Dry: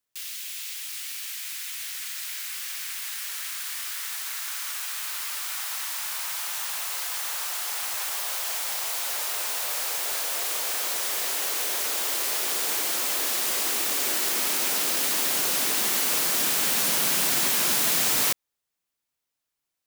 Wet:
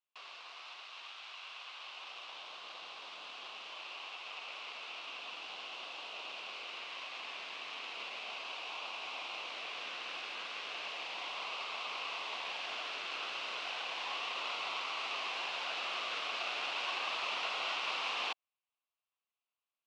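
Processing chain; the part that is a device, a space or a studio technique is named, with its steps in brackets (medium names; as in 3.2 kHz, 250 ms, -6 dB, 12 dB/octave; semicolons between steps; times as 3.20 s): voice changer toy (ring modulator with a swept carrier 1.3 kHz, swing 30%, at 0.34 Hz; cabinet simulation 530–3900 Hz, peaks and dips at 710 Hz +4 dB, 1.1 kHz +8 dB, 1.8 kHz -7 dB, 2.7 kHz +8 dB); trim -6 dB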